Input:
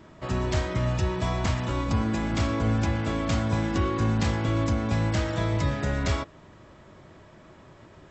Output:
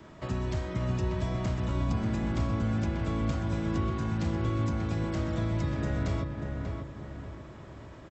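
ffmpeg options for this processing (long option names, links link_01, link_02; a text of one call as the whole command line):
ffmpeg -i in.wav -filter_complex "[0:a]acrossover=split=270|560|1500[link_01][link_02][link_03][link_04];[link_01]acompressor=threshold=-29dB:ratio=4[link_05];[link_02]acompressor=threshold=-43dB:ratio=4[link_06];[link_03]acompressor=threshold=-46dB:ratio=4[link_07];[link_04]acompressor=threshold=-49dB:ratio=4[link_08];[link_05][link_06][link_07][link_08]amix=inputs=4:normalize=0,asplit=2[link_09][link_10];[link_10]adelay=589,lowpass=frequency=2000:poles=1,volume=-4dB,asplit=2[link_11][link_12];[link_12]adelay=589,lowpass=frequency=2000:poles=1,volume=0.44,asplit=2[link_13][link_14];[link_14]adelay=589,lowpass=frequency=2000:poles=1,volume=0.44,asplit=2[link_15][link_16];[link_16]adelay=589,lowpass=frequency=2000:poles=1,volume=0.44,asplit=2[link_17][link_18];[link_18]adelay=589,lowpass=frequency=2000:poles=1,volume=0.44,asplit=2[link_19][link_20];[link_20]adelay=589,lowpass=frequency=2000:poles=1,volume=0.44[link_21];[link_09][link_11][link_13][link_15][link_17][link_19][link_21]amix=inputs=7:normalize=0" out.wav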